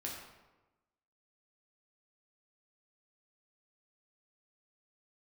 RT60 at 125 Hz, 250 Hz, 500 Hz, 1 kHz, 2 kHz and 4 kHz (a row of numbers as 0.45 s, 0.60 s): 1.2 s, 1.2 s, 1.1 s, 1.1 s, 0.90 s, 0.70 s